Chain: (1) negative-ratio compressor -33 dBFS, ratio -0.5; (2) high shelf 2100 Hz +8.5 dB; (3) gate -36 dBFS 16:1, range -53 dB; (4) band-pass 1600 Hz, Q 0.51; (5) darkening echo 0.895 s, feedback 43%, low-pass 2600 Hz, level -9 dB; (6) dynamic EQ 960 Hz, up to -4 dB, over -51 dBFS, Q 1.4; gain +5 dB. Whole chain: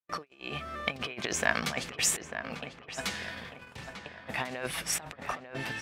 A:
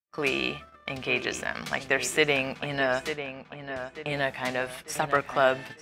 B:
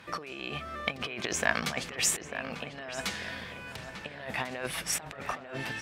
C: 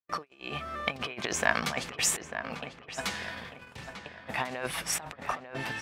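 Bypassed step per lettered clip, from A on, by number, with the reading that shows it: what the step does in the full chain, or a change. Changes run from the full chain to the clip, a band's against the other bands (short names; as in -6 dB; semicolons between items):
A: 1, crest factor change -7.0 dB; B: 3, momentary loudness spread change -3 LU; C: 6, 1 kHz band +3.0 dB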